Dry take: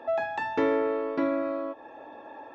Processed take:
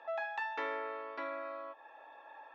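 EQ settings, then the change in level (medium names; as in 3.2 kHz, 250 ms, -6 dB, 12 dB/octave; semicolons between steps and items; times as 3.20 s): high-pass 1 kHz 12 dB/octave; distance through air 100 m; -3.0 dB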